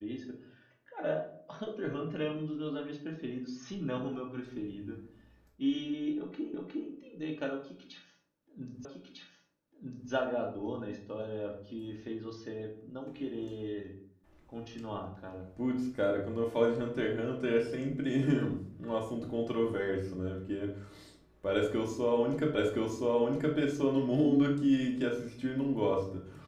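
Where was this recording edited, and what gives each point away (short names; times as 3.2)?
6.54 repeat of the last 0.36 s
8.85 repeat of the last 1.25 s
22.55 repeat of the last 1.02 s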